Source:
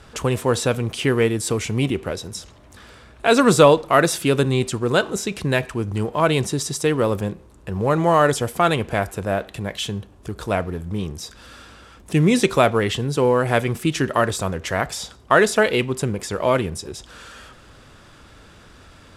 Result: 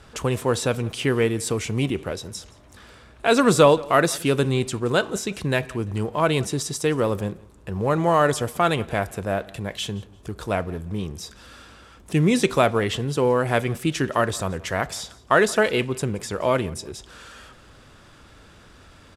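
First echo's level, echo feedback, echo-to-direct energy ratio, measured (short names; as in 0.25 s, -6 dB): -23.0 dB, 28%, -22.5 dB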